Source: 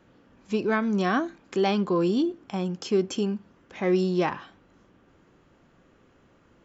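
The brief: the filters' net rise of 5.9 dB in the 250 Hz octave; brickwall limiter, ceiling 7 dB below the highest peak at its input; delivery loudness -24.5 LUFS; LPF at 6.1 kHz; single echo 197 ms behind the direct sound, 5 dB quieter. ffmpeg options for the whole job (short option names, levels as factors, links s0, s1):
-af "lowpass=6100,equalizer=f=250:t=o:g=8.5,alimiter=limit=0.158:level=0:latency=1,aecho=1:1:197:0.562"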